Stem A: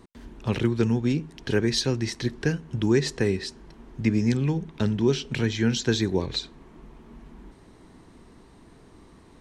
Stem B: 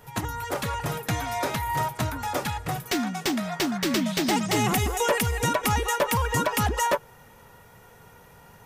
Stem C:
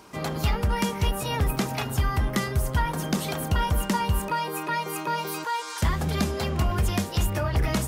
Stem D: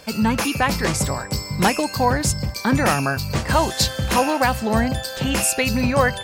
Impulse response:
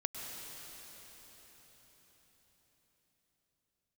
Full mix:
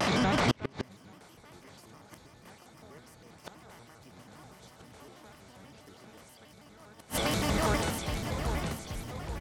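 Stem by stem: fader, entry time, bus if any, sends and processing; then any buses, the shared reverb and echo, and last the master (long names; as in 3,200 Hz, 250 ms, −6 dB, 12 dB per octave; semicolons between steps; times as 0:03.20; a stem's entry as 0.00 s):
−1.5 dB, 0.00 s, no bus, no send, echo send −10.5 dB, no processing
−18.0 dB, 0.25 s, bus A, no send, no echo send, no processing
−12.0 dB, 0.90 s, bus A, no send, echo send −4.5 dB, no processing
−3.0 dB, 0.00 s, bus A, no send, echo send −6 dB, compressor on every frequency bin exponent 0.4; high-pass filter 74 Hz 24 dB per octave; automatic ducking −7 dB, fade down 0.95 s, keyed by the first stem
bus A: 0.0 dB, low-pass filter 4,700 Hz 12 dB per octave; brickwall limiter −18.5 dBFS, peak gain reduction 11 dB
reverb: not used
echo: repeating echo 831 ms, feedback 40%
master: gate with flip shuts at −13 dBFS, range −33 dB; pitch modulation by a square or saw wave square 6.2 Hz, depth 250 cents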